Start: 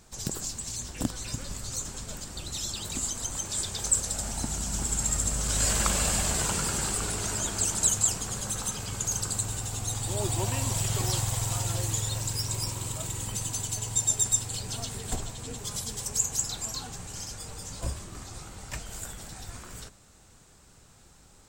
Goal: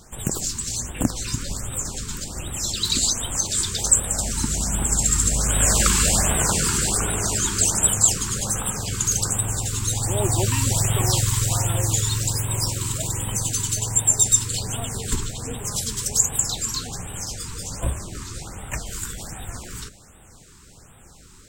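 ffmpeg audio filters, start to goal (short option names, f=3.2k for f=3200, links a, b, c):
-filter_complex "[0:a]asettb=1/sr,asplit=3[a][b][c];[a]atrim=end=2.834[d];[b]atrim=start=2.83:end=3.47,asetpts=PTS-STARTPTS,afade=t=in:d=0.004:c=qsin,afade=t=out:st=0.636:d=0.004:c=qsin,equalizer=f=4.2k:w=2.5:g=14[e];[c]atrim=start=3.466[f];[d][e]acrossfade=d=0.004:c1=hsin:c2=qsin[g];[g][f]acrossfade=d=0.004:c1=qsin:c2=hsin,afftfilt=real='re*(1-between(b*sr/1024,590*pow(5500/590,0.5+0.5*sin(2*PI*1.3*pts/sr))/1.41,590*pow(5500/590,0.5+0.5*sin(2*PI*1.3*pts/sr))*1.41))':imag='im*(1-between(b*sr/1024,590*pow(5500/590,0.5+0.5*sin(2*PI*1.3*pts/sr))/1.41,590*pow(5500/590,0.5+0.5*sin(2*PI*1.3*pts/sr))*1.41))':win_size=1024:overlap=0.75,volume=8dB"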